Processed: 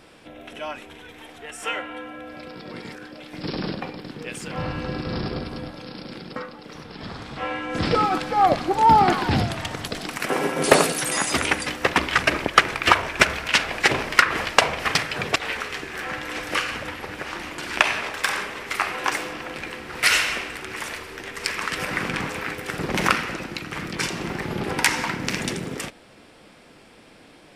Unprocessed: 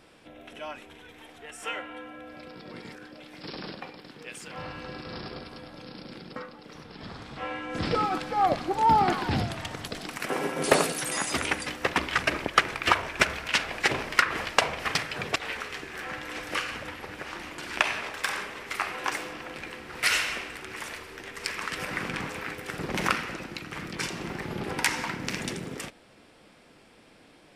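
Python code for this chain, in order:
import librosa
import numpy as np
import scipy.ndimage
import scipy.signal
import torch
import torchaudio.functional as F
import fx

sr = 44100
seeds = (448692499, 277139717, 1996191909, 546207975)

y = fx.low_shelf(x, sr, hz=390.0, db=9.0, at=(3.33, 5.71))
y = y * librosa.db_to_amplitude(6.0)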